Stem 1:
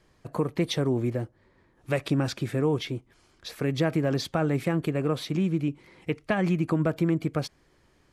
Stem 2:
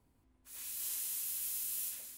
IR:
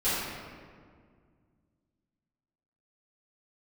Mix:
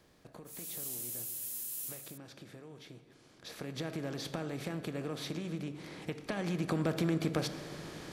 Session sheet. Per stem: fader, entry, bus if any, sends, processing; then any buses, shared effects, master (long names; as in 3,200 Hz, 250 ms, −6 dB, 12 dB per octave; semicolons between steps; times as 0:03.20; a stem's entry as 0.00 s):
0:03.18 −22 dB → 0:03.85 −10 dB → 0:06.16 −10 dB → 0:06.82 −3 dB, 0.00 s, send −21 dB, compressor on every frequency bin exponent 0.6; downward compressor, threshold −26 dBFS, peak gain reduction 8.5 dB
−1.5 dB, 0.00 s, no send, automatic ducking −6 dB, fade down 0.95 s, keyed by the first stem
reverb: on, RT60 2.0 s, pre-delay 4 ms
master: high-shelf EQ 4,300 Hz +6.5 dB